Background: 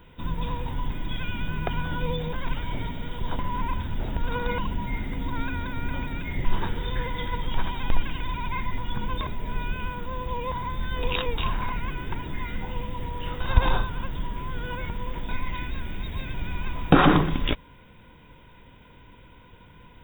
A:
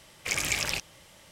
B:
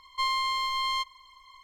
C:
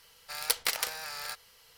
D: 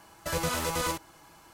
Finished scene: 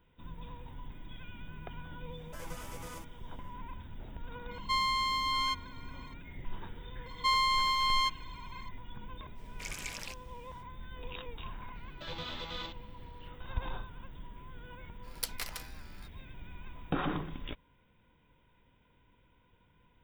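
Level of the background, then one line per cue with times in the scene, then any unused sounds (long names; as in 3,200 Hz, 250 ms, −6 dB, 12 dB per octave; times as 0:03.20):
background −16.5 dB
0:02.07: mix in D −16.5 dB, fades 0.10 s + parametric band 4,100 Hz −10.5 dB 0.22 octaves
0:04.51: mix in B −2.5 dB
0:07.06: mix in B
0:09.34: mix in A −13.5 dB, fades 0.05 s
0:11.75: mix in D −2 dB + transistor ladder low-pass 3,800 Hz, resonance 75%
0:14.73: mix in C −13.5 dB + multiband upward and downward expander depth 100%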